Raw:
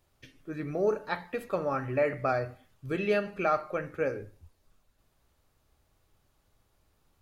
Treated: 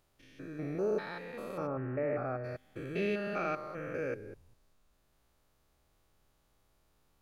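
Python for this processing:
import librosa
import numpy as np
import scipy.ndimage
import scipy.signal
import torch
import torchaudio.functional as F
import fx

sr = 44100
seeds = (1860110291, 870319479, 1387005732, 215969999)

y = fx.spec_steps(x, sr, hold_ms=200)
y = fx.dynamic_eq(y, sr, hz=810.0, q=1.2, threshold_db=-47.0, ratio=4.0, max_db=-5)
y = fx.lowpass(y, sr, hz=1400.0, slope=12, at=(1.66, 2.43), fade=0.02)
y = fx.peak_eq(y, sr, hz=86.0, db=-5.5, octaves=0.88)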